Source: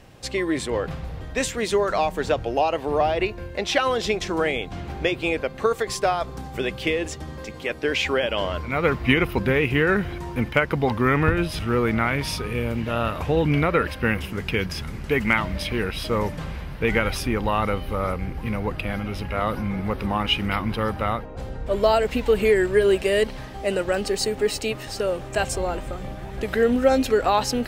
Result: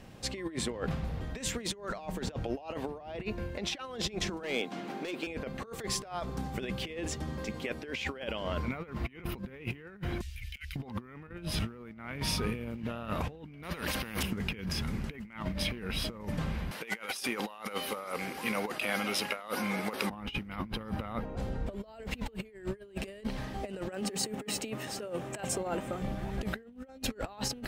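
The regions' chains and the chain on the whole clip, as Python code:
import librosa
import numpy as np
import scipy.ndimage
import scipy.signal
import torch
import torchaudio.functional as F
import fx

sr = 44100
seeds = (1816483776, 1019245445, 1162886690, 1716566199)

y = fx.chain(x, sr, fx.highpass(hz=220.0, slope=24),
    fx.clip_hard(threshold_db=-21.0), at=(4.43, 5.27))
y = fx.chain(y, sr, fx.cheby2_bandstop(low_hz=230.0, high_hz=780.0, order=4, stop_db=70),
    fx.over_compress(threshold_db=-38.0, ratio=-0.5), at=(10.21, 10.76))
y = fx.chain(y, sr, fx.notch(hz=7600.0, q=21.0),
    fx.spectral_comp(ratio=2.0), at=(13.63, 14.23))
y = fx.chain(y, sr, fx.highpass(hz=460.0, slope=12),
    fx.over_compress(threshold_db=-32.0, ratio=-0.5),
    fx.peak_eq(hz=8500.0, db=11.5, octaves=2.2), at=(16.71, 20.1))
y = fx.chain(y, sr, fx.highpass(hz=130.0, slope=12),
    fx.peak_eq(hz=4500.0, db=-5.5, octaves=0.51),
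    fx.hum_notches(base_hz=50, count=5), at=(23.88, 26.02))
y = fx.peak_eq(y, sr, hz=210.0, db=7.0, octaves=0.58)
y = fx.over_compress(y, sr, threshold_db=-27.0, ratio=-0.5)
y = y * 10.0 ** (-8.5 / 20.0)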